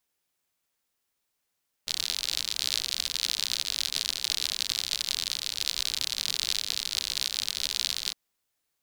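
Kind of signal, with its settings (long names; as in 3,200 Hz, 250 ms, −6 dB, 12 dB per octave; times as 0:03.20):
rain-like ticks over hiss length 6.26 s, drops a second 69, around 4,100 Hz, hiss −21 dB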